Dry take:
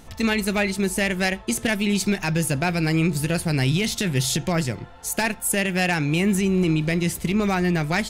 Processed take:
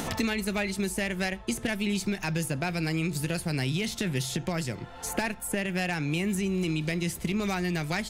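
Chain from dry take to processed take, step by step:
multiband upward and downward compressor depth 100%
level −8 dB

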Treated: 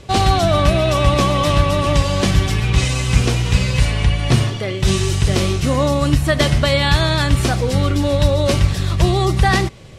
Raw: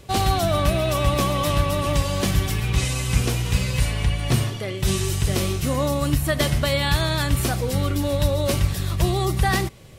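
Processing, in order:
low-pass filter 7,200 Hz 12 dB per octave
level +6 dB

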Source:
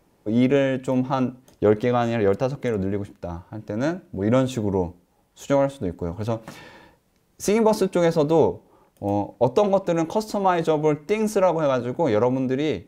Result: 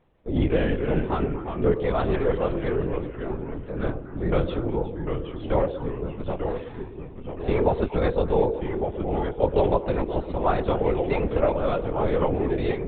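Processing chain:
linear-prediction vocoder at 8 kHz whisper
delay with pitch and tempo change per echo 219 ms, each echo −2 semitones, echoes 3, each echo −6 dB
echo through a band-pass that steps 120 ms, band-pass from 430 Hz, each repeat 1.4 octaves, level −9 dB
level −3.5 dB

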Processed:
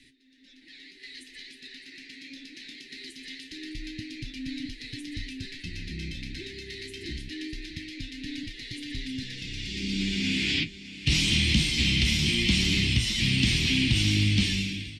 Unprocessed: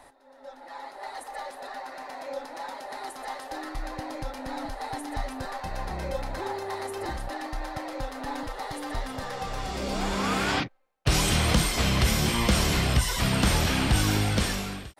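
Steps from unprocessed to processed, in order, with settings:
inverse Chebyshev band-stop filter 560–1,300 Hz, stop band 50 dB
spectral tilt +2 dB per octave
in parallel at −7 dB: soft clipping −26 dBFS, distortion −10 dB
on the sum: low-pass filter 3,400 Hz 12 dB per octave
on a send: single-tap delay 611 ms −14.5 dB
on the sum: flanger 0.22 Hz, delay 7.4 ms, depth 7.4 ms, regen +50%
level +7 dB

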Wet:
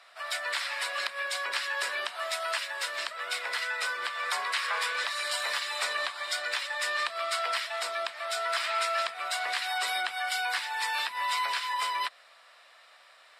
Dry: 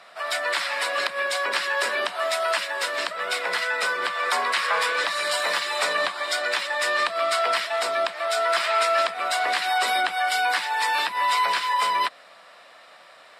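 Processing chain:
high-pass filter 1,300 Hz 6 dB per octave
level −4.5 dB

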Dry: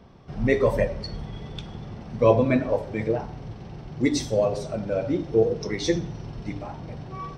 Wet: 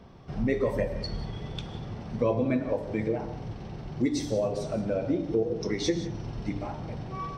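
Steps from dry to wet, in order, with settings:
dynamic equaliser 260 Hz, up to +5 dB, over −34 dBFS, Q 0.99
downward compressor 2.5 to 1, threshold −27 dBFS, peak gain reduction 11.5 dB
convolution reverb, pre-delay 3 ms, DRR 12 dB

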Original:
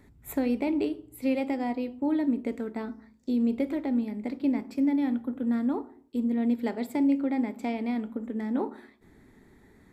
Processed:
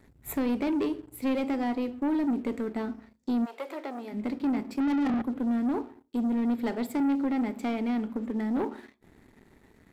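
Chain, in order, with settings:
leveller curve on the samples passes 2
0:03.44–0:04.12: high-pass filter 630 Hz → 300 Hz 24 dB per octave
0:04.80–0:05.22: mid-hump overdrive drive 36 dB, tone 1,400 Hz, clips at −17 dBFS
level −4.5 dB

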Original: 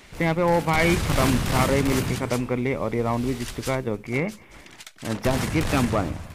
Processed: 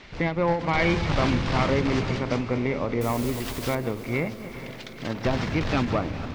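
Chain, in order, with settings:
delay that plays each chunk backwards 136 ms, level −13 dB
low-pass filter 5,200 Hz 24 dB per octave
in parallel at 0 dB: downward compressor, threshold −32 dBFS, peak gain reduction 15 dB
0:03.01–0:03.75: on the sum: bit-depth reduction 6 bits, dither triangular
on a send: feedback delay with all-pass diffusion 455 ms, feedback 59%, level −13 dB
on the sum: every ending faded ahead of time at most 120 dB per second
level −4 dB

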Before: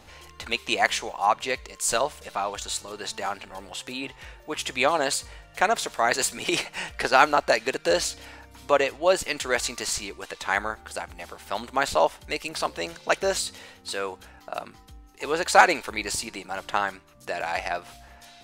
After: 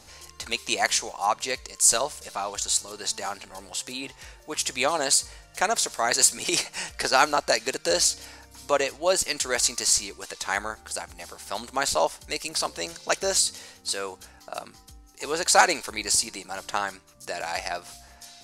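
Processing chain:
flat-topped bell 7,300 Hz +10.5 dB
level −2.5 dB

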